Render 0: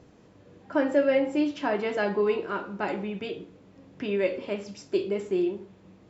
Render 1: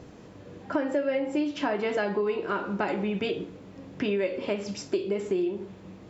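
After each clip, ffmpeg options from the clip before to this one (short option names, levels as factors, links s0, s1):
-af "acompressor=threshold=0.0251:ratio=6,volume=2.37"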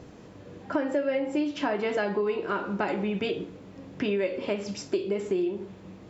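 -af anull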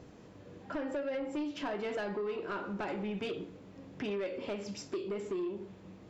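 -af "asoftclip=type=tanh:threshold=0.0631,volume=0.501"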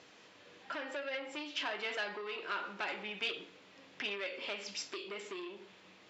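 -af "bandpass=f=3200:t=q:w=0.95:csg=0,volume=2.82"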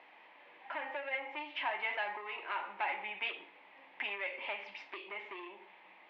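-af "highpass=440,equalizer=f=450:t=q:w=4:g=-8,equalizer=f=870:t=q:w=4:g=10,equalizer=f=1400:t=q:w=4:g=-7,equalizer=f=2100:t=q:w=4:g=6,lowpass=f=2700:w=0.5412,lowpass=f=2700:w=1.3066,volume=1.12"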